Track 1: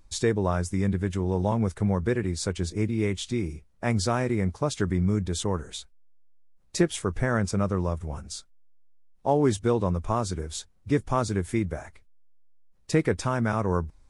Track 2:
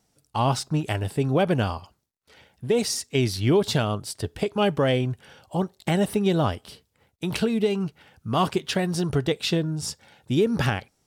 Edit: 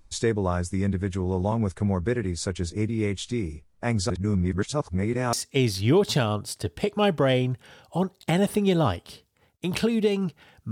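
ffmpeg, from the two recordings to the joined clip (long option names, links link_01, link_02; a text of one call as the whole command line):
ffmpeg -i cue0.wav -i cue1.wav -filter_complex "[0:a]apad=whole_dur=10.71,atrim=end=10.71,asplit=2[link_01][link_02];[link_01]atrim=end=4.102[link_03];[link_02]atrim=start=4.098:end=5.332,asetpts=PTS-STARTPTS,areverse[link_04];[1:a]atrim=start=2.918:end=8.3[link_05];[link_03][link_04]acrossfade=duration=0.004:curve1=hsin:curve2=hsin[link_06];[link_06][link_05]acrossfade=duration=0.004:curve1=hsin:curve2=hsin" out.wav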